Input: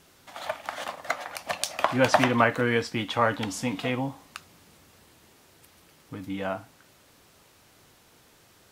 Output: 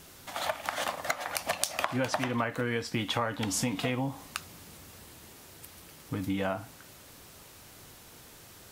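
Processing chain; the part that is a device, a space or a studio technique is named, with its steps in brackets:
ASMR close-microphone chain (low-shelf EQ 120 Hz +5.5 dB; downward compressor 8 to 1, threshold −31 dBFS, peak gain reduction 17 dB; high-shelf EQ 7,400 Hz +7 dB)
level +4 dB

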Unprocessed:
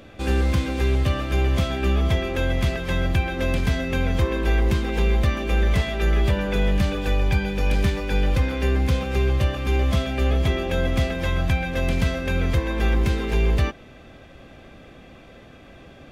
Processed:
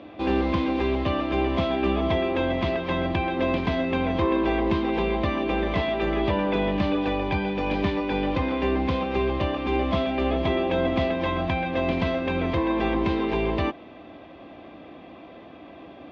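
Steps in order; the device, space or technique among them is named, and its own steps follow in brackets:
guitar cabinet (loudspeaker in its box 110–4,000 Hz, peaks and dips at 130 Hz −8 dB, 310 Hz +10 dB, 690 Hz +7 dB, 1,000 Hz +9 dB, 1,500 Hz −5 dB)
level −1 dB

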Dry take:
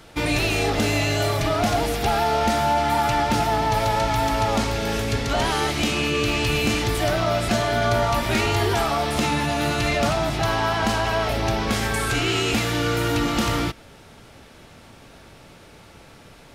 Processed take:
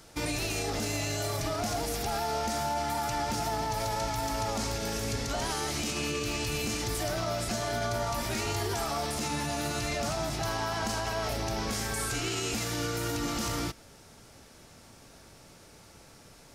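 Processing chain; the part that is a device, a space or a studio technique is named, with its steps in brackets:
over-bright horn tweeter (high shelf with overshoot 4,300 Hz +6.5 dB, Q 1.5; brickwall limiter −15.5 dBFS, peak gain reduction 7.5 dB)
level −7.5 dB

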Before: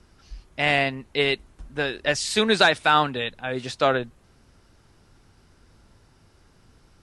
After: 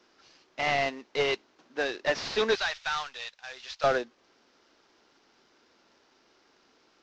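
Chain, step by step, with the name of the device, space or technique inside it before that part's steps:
early wireless headset (high-pass filter 280 Hz 24 dB per octave; variable-slope delta modulation 32 kbit/s)
0:02.55–0:03.84: guitar amp tone stack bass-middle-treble 10-0-10
level −2.5 dB

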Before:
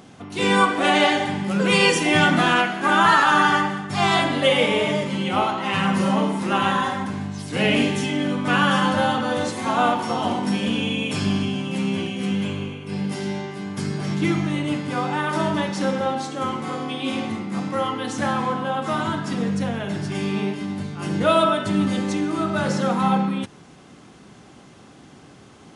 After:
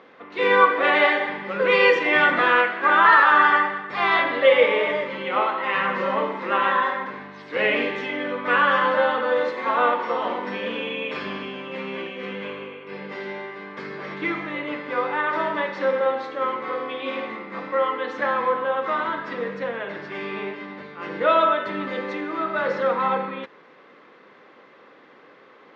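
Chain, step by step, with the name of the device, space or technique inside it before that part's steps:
phone earpiece (loudspeaker in its box 460–3,400 Hz, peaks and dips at 500 Hz +9 dB, 740 Hz −7 dB, 1,100 Hz +4 dB, 1,900 Hz +6 dB, 3,000 Hz −6 dB)

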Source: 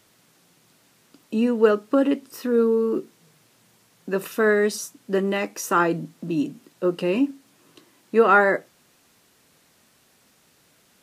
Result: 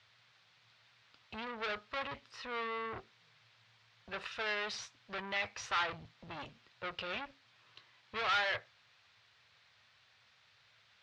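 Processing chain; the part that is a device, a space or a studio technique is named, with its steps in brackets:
scooped metal amplifier (tube saturation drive 27 dB, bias 0.6; loudspeaker in its box 81–3,900 Hz, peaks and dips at 110 Hz +9 dB, 170 Hz −8 dB, 2,900 Hz −3 dB; guitar amp tone stack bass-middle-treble 10-0-10)
level +5.5 dB

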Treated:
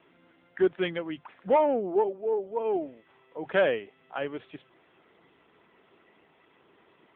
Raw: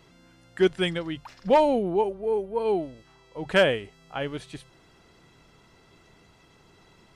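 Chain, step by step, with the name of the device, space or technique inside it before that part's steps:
telephone (band-pass filter 260–3,100 Hz; soft clipping −14 dBFS, distortion −17 dB; AMR narrowband 7.95 kbit/s 8,000 Hz)

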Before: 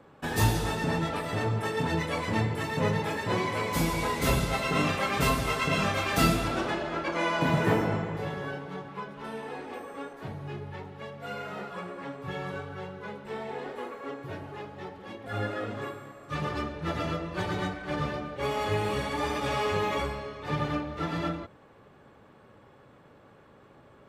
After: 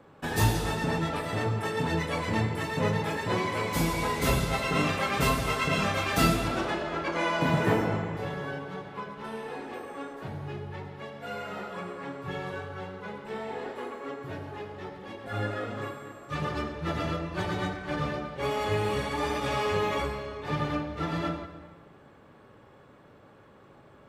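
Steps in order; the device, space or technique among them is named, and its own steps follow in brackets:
compressed reverb return (on a send at −7 dB: convolution reverb RT60 1.1 s, pre-delay 71 ms + downward compressor, threshold −33 dBFS, peak gain reduction 13.5 dB)

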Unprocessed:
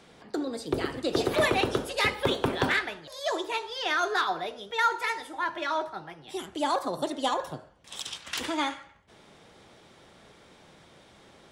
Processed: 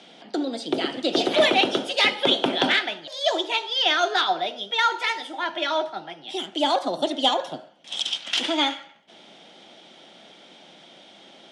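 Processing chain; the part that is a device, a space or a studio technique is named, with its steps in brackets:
television speaker (loudspeaker in its box 200–8,400 Hz, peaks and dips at 440 Hz −7 dB, 690 Hz +4 dB, 1,100 Hz −9 dB, 1,700 Hz −4 dB, 3,200 Hz +9 dB, 7,600 Hz −6 dB)
level +6 dB

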